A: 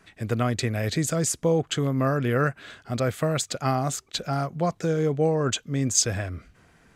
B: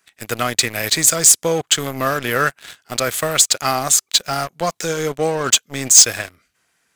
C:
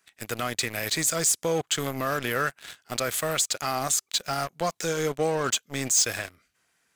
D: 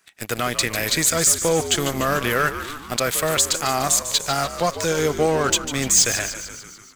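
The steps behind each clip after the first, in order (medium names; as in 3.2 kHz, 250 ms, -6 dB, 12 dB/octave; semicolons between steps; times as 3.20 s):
tilt EQ +4 dB/octave; waveshaping leveller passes 3; trim -3.5 dB
peak limiter -11 dBFS, peak gain reduction 9.5 dB; trim -5 dB
frequency-shifting echo 147 ms, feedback 60%, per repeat -74 Hz, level -11 dB; trim +6 dB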